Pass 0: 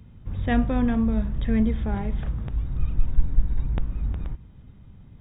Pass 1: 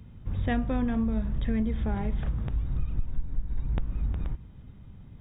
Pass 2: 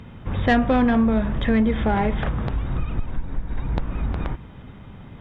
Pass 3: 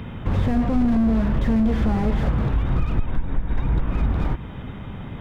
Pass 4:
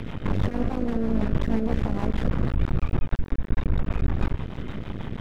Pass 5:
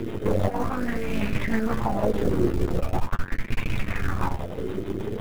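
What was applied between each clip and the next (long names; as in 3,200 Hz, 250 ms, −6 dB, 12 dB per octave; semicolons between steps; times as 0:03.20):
downward compressor 6 to 1, threshold −23 dBFS, peak gain reduction 12.5 dB
mid-hump overdrive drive 17 dB, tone 2,100 Hz, clips at −15.5 dBFS; level +8 dB
in parallel at +2.5 dB: downward compressor, threshold −28 dBFS, peak gain reduction 13.5 dB; on the sum: slew-rate limiting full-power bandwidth 33 Hz
brickwall limiter −17.5 dBFS, peak gain reduction 9.5 dB; half-wave rectification; rotating-speaker cabinet horn 6.3 Hz; level +6.5 dB
log-companded quantiser 6 bits; flanger 0.56 Hz, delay 8.5 ms, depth 3.2 ms, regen −21%; auto-filter bell 0.41 Hz 360–2,500 Hz +17 dB; level +1.5 dB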